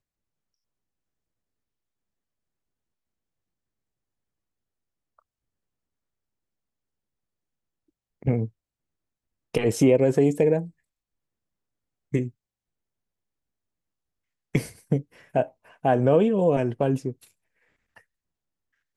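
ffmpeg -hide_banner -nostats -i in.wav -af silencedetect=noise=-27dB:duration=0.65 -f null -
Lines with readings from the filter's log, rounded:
silence_start: 0.00
silence_end: 8.27 | silence_duration: 8.27
silence_start: 8.45
silence_end: 9.55 | silence_duration: 1.09
silence_start: 10.62
silence_end: 12.14 | silence_duration: 1.53
silence_start: 12.27
silence_end: 14.55 | silence_duration: 2.28
silence_start: 17.10
silence_end: 18.97 | silence_duration: 1.87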